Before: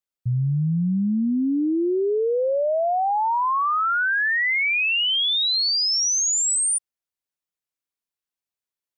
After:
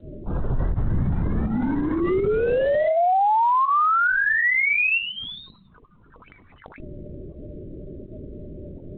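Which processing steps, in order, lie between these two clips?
0:01.10–0:02.02: drawn EQ curve 170 Hz 0 dB, 520 Hz −23 dB, 780 Hz −25 dB, 1,400 Hz −9 dB
mains hum 50 Hz, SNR 25 dB
in parallel at −8 dB: comparator with hysteresis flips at −47 dBFS
on the sum: single-sideband voice off tune −50 Hz 170–2,700 Hz
0:04.98–0:06.26: phaser with its sweep stopped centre 460 Hz, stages 8
fake sidechain pumping 82 BPM, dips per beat 1, −16 dB, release 96 ms
on a send: flutter between parallel walls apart 11.2 metres, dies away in 0.25 s
on the sum: spectral peaks only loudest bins 16
linear-prediction vocoder at 8 kHz whisper
bad sample-rate conversion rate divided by 3×, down filtered, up zero stuff
boost into a limiter +9.5 dB
level −4.5 dB
G.726 32 kbit/s 8,000 Hz

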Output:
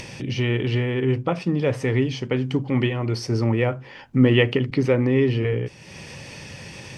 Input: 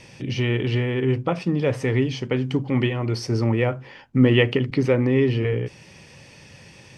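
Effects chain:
upward compression, threshold −29 dBFS

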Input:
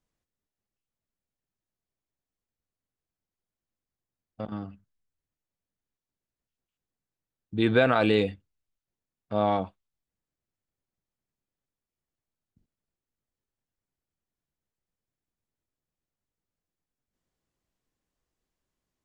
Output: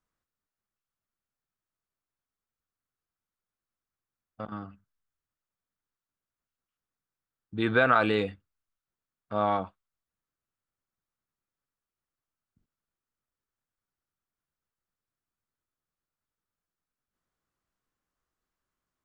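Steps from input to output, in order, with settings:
parametric band 1,300 Hz +10.5 dB 0.9 octaves
level −4.5 dB

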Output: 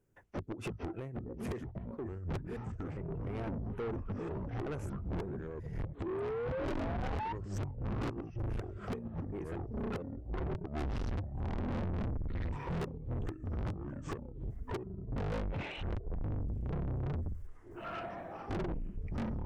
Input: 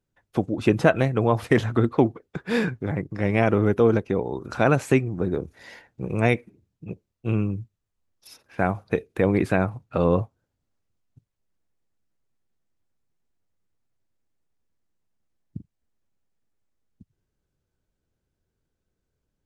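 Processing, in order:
pitch shifter gated in a rhythm −11.5 semitones, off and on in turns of 233 ms
in parallel at +1 dB: brickwall limiter −14.5 dBFS, peak gain reduction 9.5 dB
on the sum: delay with pitch and tempo change per echo 660 ms, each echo −6 semitones, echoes 3
gate with flip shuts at −9 dBFS, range −26 dB
graphic EQ with 15 bands 100 Hz +4 dB, 400 Hz +7 dB, 4,000 Hz −12 dB
sound drawn into the spectrogram rise, 0:06.06–0:07.33, 360–940 Hz −32 dBFS
automatic gain control gain up to 10.5 dB
soft clipping −30 dBFS, distortion −1 dB
level −4 dB

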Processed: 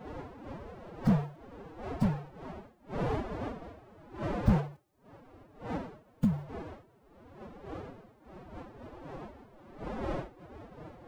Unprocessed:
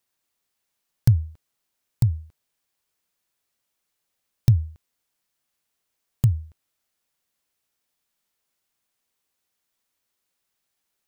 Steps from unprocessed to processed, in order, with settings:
wind on the microphone 590 Hz −35 dBFS
phase-vocoder pitch shift with formants kept +10.5 semitones
slew-rate limiting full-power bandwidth 45 Hz
level −5.5 dB

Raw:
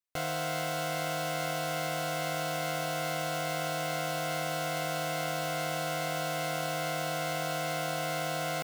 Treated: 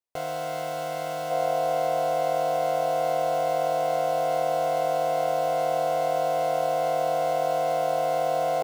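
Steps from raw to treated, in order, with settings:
flat-topped bell 600 Hz +8.5 dB, from 0:01.30 +15 dB
level −4 dB

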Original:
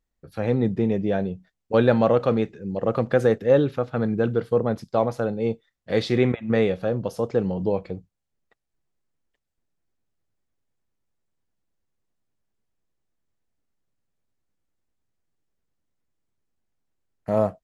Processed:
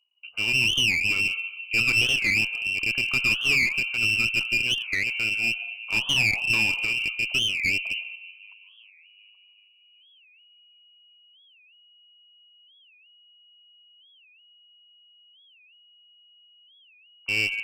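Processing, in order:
mains-hum notches 60/120/180/240 Hz
in parallel at −2.5 dB: brickwall limiter −13.5 dBFS, peak gain reduction 8.5 dB
on the sum: tilt shelving filter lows +6.5 dB
on a send at −9 dB: convolution reverb RT60 0.85 s, pre-delay 100 ms
on the sum: voice inversion scrambler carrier 2,900 Hz
low-shelf EQ 170 Hz −11 dB
phaser with its sweep stopped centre 750 Hz, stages 4
delay with a high-pass on its return 381 ms, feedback 55%, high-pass 1,700 Hz, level −21 dB
asymmetric clip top −22 dBFS
wow of a warped record 45 rpm, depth 250 cents
level −1.5 dB

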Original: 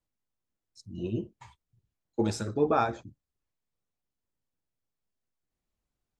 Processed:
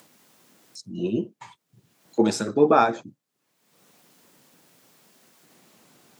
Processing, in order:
high-pass filter 160 Hz 24 dB per octave
upward compression, threshold −44 dBFS
level +8 dB

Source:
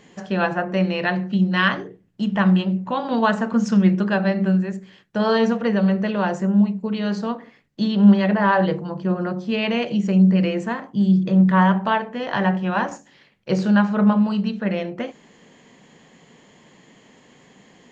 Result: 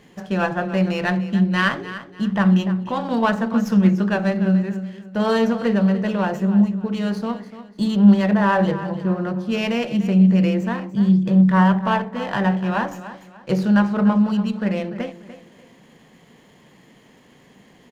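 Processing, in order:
low-shelf EQ 120 Hz +6.5 dB
repeating echo 294 ms, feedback 32%, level −13.5 dB
windowed peak hold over 3 samples
level −1 dB

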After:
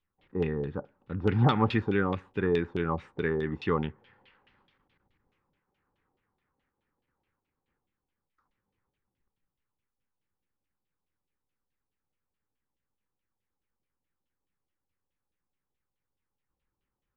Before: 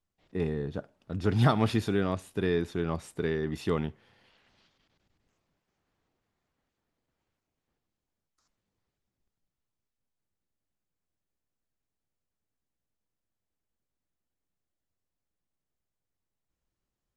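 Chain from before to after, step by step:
Butterworth band-reject 660 Hz, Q 4.5
auto-filter low-pass saw down 4.7 Hz 630–3,300 Hz

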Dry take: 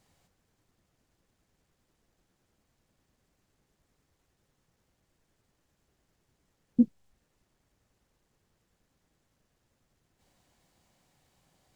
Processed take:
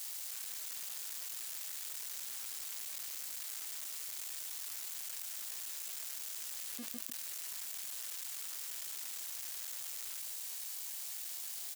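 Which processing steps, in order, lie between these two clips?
converter with a step at zero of −35.5 dBFS
high-pass filter 330 Hz 6 dB per octave
first difference
repeating echo 152 ms, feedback 36%, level −17 dB
envelope flattener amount 100%
level −1 dB

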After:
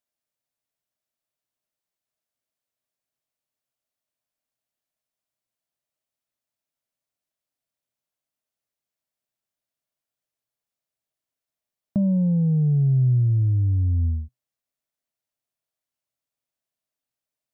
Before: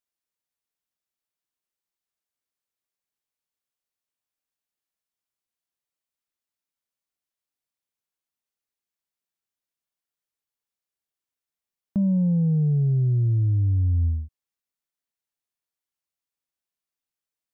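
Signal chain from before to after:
thirty-one-band graphic EQ 125 Hz +10 dB, 250 Hz +5 dB, 630 Hz +10 dB
downward compressor, threshold −17 dBFS, peak gain reduction 7.5 dB

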